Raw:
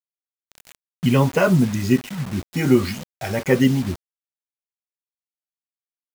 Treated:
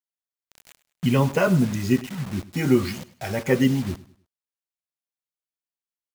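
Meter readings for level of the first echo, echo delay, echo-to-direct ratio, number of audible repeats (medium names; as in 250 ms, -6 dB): -18.5 dB, 102 ms, -18.0 dB, 2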